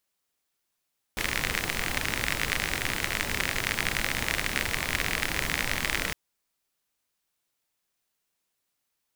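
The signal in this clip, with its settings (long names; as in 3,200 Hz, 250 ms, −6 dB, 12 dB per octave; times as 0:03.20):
rain-like ticks over hiss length 4.96 s, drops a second 51, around 2,000 Hz, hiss −1.5 dB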